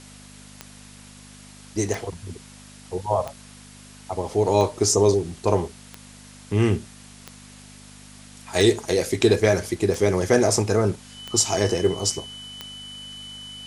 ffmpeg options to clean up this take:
-af "adeclick=t=4,bandreject=f=50.4:t=h:w=4,bandreject=f=100.8:t=h:w=4,bandreject=f=151.2:t=h:w=4,bandreject=f=201.6:t=h:w=4,bandreject=f=252:t=h:w=4,bandreject=f=3k:w=30,afwtdn=0.005"

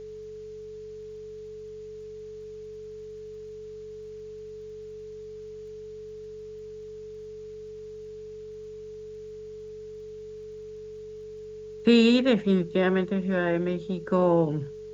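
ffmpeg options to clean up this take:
-af "adeclick=t=4,bandreject=f=47.6:t=h:w=4,bandreject=f=95.2:t=h:w=4,bandreject=f=142.8:t=h:w=4,bandreject=f=190.4:t=h:w=4,bandreject=f=430:w=30,agate=range=-21dB:threshold=-33dB"

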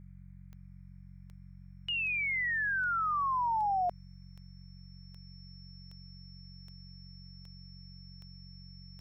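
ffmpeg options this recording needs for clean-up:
-af "adeclick=t=4,bandreject=f=45.7:t=h:w=4,bandreject=f=91.4:t=h:w=4,bandreject=f=137.1:t=h:w=4,bandreject=f=182.8:t=h:w=4,bandreject=f=5.4k:w=30,afftdn=nr=29:nf=-51"

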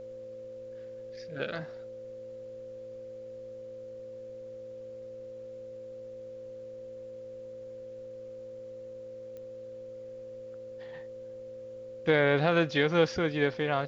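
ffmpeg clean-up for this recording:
-af "adeclick=t=4,bandreject=f=114.3:t=h:w=4,bandreject=f=228.6:t=h:w=4,bandreject=f=342.9:t=h:w=4,bandreject=f=457.2:t=h:w=4,bandreject=f=571.5:t=h:w=4,bandreject=f=520:w=30,agate=range=-21dB:threshold=-36dB"

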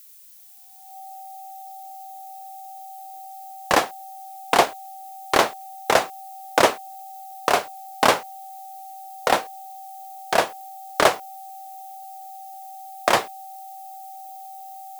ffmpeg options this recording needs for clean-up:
-af "bandreject=f=770:w=30,afftdn=nr=29:nf=-39"

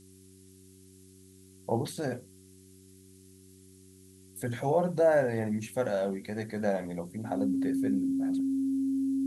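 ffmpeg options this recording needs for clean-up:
-af "bandreject=f=94.7:t=h:w=4,bandreject=f=189.4:t=h:w=4,bandreject=f=284.1:t=h:w=4,bandreject=f=378.8:t=h:w=4,bandreject=f=270:w=30,afftdn=nr=21:nf=-55"

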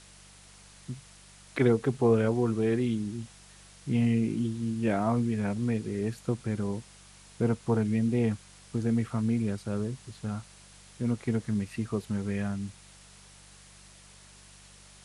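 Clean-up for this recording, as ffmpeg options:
-af "bandreject=f=48.5:t=h:w=4,bandreject=f=97:t=h:w=4,bandreject=f=145.5:t=h:w=4,bandreject=f=194:t=h:w=4,afwtdn=0.0025"

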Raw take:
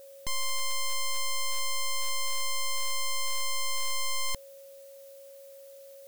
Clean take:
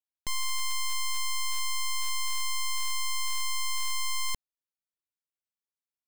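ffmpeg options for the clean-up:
-af "bandreject=f=550:w=30,agate=range=-21dB:threshold=-41dB"

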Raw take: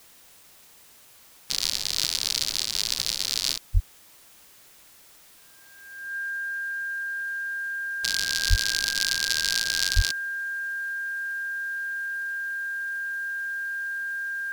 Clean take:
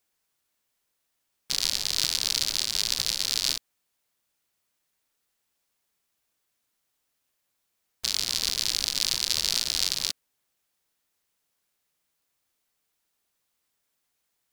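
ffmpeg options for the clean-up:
-filter_complex "[0:a]bandreject=f=1.6k:w=30,asplit=3[a][b][c];[a]afade=t=out:st=3.73:d=0.02[d];[b]highpass=f=140:w=0.5412,highpass=f=140:w=1.3066,afade=t=in:st=3.73:d=0.02,afade=t=out:st=3.85:d=0.02[e];[c]afade=t=in:st=3.85:d=0.02[f];[d][e][f]amix=inputs=3:normalize=0,asplit=3[g][h][i];[g]afade=t=out:st=8.49:d=0.02[j];[h]highpass=f=140:w=0.5412,highpass=f=140:w=1.3066,afade=t=in:st=8.49:d=0.02,afade=t=out:st=8.61:d=0.02[k];[i]afade=t=in:st=8.61:d=0.02[l];[j][k][l]amix=inputs=3:normalize=0,asplit=3[m][n][o];[m]afade=t=out:st=9.95:d=0.02[p];[n]highpass=f=140:w=0.5412,highpass=f=140:w=1.3066,afade=t=in:st=9.95:d=0.02,afade=t=out:st=10.07:d=0.02[q];[o]afade=t=in:st=10.07:d=0.02[r];[p][q][r]amix=inputs=3:normalize=0,afwtdn=0.0022"

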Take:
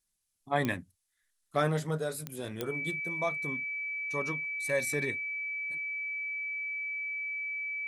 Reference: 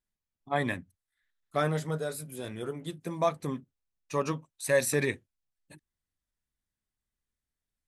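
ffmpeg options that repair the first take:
-af "adeclick=t=4,bandreject=f=2.3k:w=30,agate=range=-21dB:threshold=-69dB,asetnsamples=n=441:p=0,asendcmd='3 volume volume 6dB',volume=0dB"

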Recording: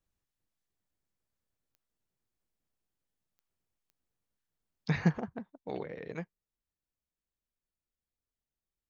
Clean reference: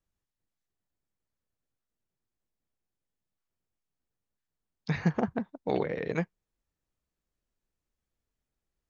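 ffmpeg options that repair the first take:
-af "adeclick=t=4,asetnsamples=n=441:p=0,asendcmd='5.18 volume volume 9.5dB',volume=0dB"

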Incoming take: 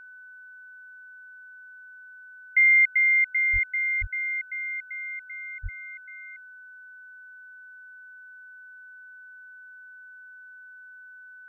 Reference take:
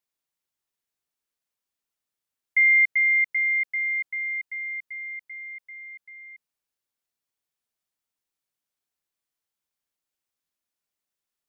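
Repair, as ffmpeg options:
-filter_complex "[0:a]bandreject=f=1.5k:w=30,asplit=3[a][b][c];[a]afade=t=out:st=3.52:d=0.02[d];[b]highpass=f=140:w=0.5412,highpass=f=140:w=1.3066,afade=t=in:st=3.52:d=0.02,afade=t=out:st=3.64:d=0.02[e];[c]afade=t=in:st=3.64:d=0.02[f];[d][e][f]amix=inputs=3:normalize=0,asplit=3[g][h][i];[g]afade=t=out:st=4:d=0.02[j];[h]highpass=f=140:w=0.5412,highpass=f=140:w=1.3066,afade=t=in:st=4:d=0.02,afade=t=out:st=4.12:d=0.02[k];[i]afade=t=in:st=4.12:d=0.02[l];[j][k][l]amix=inputs=3:normalize=0,asplit=3[m][n][o];[m]afade=t=out:st=5.62:d=0.02[p];[n]highpass=f=140:w=0.5412,highpass=f=140:w=1.3066,afade=t=in:st=5.62:d=0.02,afade=t=out:st=5.74:d=0.02[q];[o]afade=t=in:st=5.74:d=0.02[r];[p][q][r]amix=inputs=3:normalize=0"

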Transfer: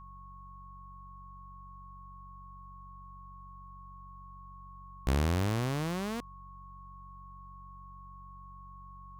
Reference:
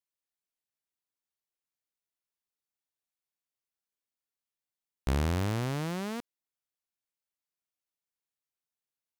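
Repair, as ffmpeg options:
-af "bandreject=f=46.7:t=h:w=4,bandreject=f=93.4:t=h:w=4,bandreject=f=140.1:t=h:w=4,bandreject=f=186.8:t=h:w=4,bandreject=f=1.1k:w=30"

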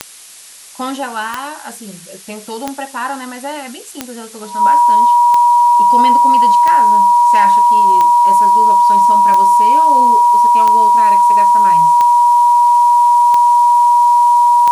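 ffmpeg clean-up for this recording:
-af "adeclick=t=4,bandreject=f=960:w=30,afftdn=nr=26:nf=-32"

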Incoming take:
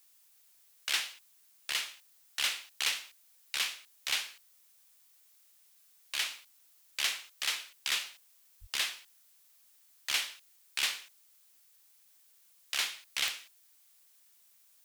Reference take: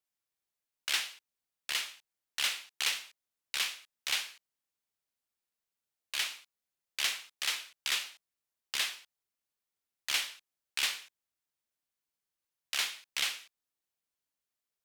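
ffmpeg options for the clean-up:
-filter_complex "[0:a]adeclick=t=4,asplit=3[a][b][c];[a]afade=t=out:st=8.6:d=0.02[d];[b]highpass=f=140:w=0.5412,highpass=f=140:w=1.3066,afade=t=in:st=8.6:d=0.02,afade=t=out:st=8.72:d=0.02[e];[c]afade=t=in:st=8.72:d=0.02[f];[d][e][f]amix=inputs=3:normalize=0,afftdn=nr=26:nf=-64"

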